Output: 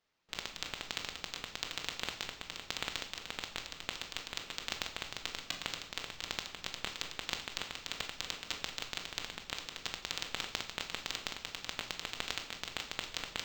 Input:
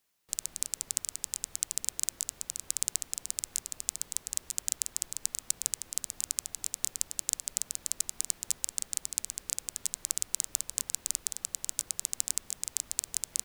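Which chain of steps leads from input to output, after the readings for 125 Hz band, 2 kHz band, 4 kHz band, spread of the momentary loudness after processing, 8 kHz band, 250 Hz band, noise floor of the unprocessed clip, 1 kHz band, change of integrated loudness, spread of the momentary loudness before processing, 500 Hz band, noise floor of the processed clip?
can't be measured, +11.0 dB, +3.0 dB, 3 LU, −17.0 dB, +7.5 dB, −58 dBFS, +12.0 dB, −7.0 dB, 4 LU, +10.0 dB, −53 dBFS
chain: rectangular room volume 540 cubic metres, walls mixed, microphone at 1.4 metres
linearly interpolated sample-rate reduction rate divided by 4×
level −6 dB

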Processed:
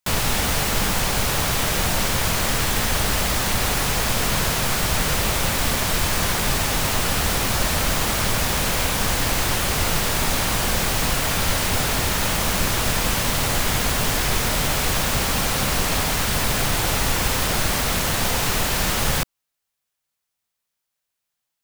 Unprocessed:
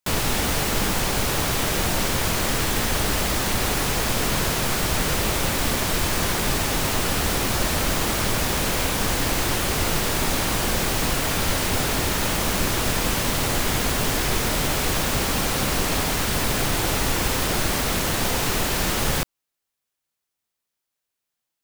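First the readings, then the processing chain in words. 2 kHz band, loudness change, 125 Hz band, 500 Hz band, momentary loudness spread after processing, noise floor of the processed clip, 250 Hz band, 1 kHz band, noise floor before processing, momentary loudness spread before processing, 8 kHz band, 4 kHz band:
+2.0 dB, +1.5 dB, +1.5 dB, −0.5 dB, 0 LU, −81 dBFS, −1.0 dB, +1.5 dB, −83 dBFS, 0 LU, +2.0 dB, +2.0 dB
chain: parametric band 330 Hz −5.5 dB 0.99 octaves
level +2 dB

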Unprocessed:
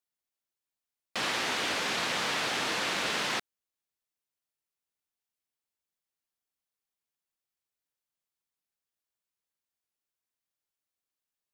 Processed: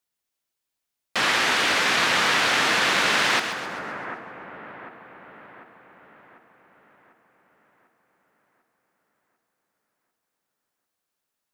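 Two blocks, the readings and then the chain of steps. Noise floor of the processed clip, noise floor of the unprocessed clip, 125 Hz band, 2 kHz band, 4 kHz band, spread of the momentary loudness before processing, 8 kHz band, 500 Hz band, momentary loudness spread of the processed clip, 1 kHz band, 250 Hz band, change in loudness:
−83 dBFS, below −85 dBFS, +7.5 dB, +11.5 dB, +8.5 dB, 4 LU, +7.5 dB, +8.0 dB, 19 LU, +10.0 dB, +7.5 dB, +9.0 dB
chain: echo with a time of its own for lows and highs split 1,800 Hz, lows 746 ms, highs 131 ms, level −8 dB
dynamic equaliser 1,600 Hz, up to +5 dB, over −43 dBFS, Q 0.97
level +6.5 dB

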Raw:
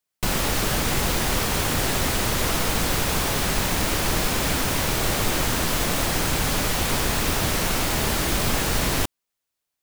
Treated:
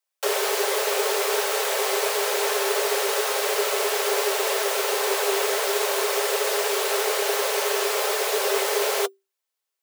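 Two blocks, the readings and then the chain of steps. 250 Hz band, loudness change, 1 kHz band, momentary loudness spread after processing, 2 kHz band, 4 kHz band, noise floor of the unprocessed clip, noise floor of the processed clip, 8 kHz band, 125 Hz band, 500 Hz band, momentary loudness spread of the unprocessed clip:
below −10 dB, 0.0 dB, +1.0 dB, 1 LU, 0.0 dB, −1.0 dB, −83 dBFS, −84 dBFS, −1.0 dB, below −40 dB, +6.5 dB, 0 LU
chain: frequency shifter +390 Hz
notch comb filter 240 Hz

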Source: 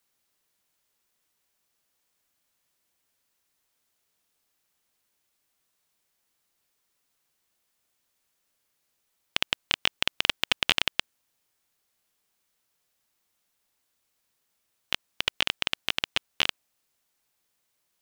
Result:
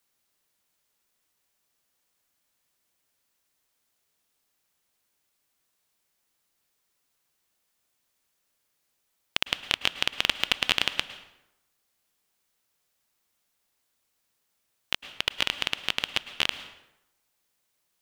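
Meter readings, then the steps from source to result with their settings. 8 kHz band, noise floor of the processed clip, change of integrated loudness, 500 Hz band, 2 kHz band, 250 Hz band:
0.0 dB, −76 dBFS, 0.0 dB, +0.5 dB, 0.0 dB, +0.5 dB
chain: dense smooth reverb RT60 0.88 s, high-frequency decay 0.7×, pre-delay 95 ms, DRR 12.5 dB

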